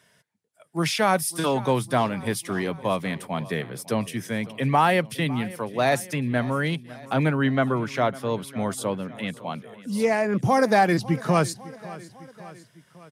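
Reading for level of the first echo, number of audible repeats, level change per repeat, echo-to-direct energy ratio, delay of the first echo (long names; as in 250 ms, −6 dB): −19.0 dB, 3, −4.5 dB, −17.5 dB, 553 ms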